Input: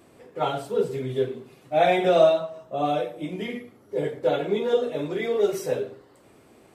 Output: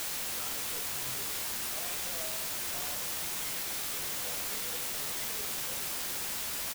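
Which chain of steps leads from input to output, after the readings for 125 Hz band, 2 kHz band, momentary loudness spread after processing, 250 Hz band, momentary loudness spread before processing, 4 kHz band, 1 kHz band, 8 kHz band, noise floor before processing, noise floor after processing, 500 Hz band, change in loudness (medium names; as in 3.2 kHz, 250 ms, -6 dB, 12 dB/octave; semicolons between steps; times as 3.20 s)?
-15.5 dB, -4.0 dB, 0 LU, -19.5 dB, 14 LU, +1.5 dB, -15.5 dB, no reading, -55 dBFS, -36 dBFS, -25.5 dB, -7.5 dB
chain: amplifier tone stack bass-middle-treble 10-0-10; compression 2.5:1, threshold -54 dBFS, peak gain reduction 18 dB; word length cut 6-bit, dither triangular; doubling 14 ms -10.5 dB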